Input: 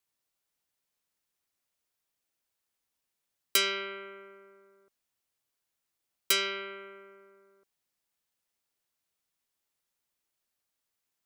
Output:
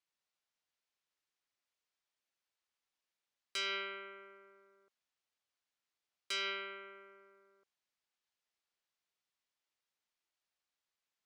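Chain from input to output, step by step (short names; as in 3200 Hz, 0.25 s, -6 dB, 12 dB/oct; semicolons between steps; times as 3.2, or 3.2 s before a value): LPF 5500 Hz 12 dB/oct; low shelf 420 Hz -9 dB; limiter -26 dBFS, peak gain reduction 10 dB; gain -2.5 dB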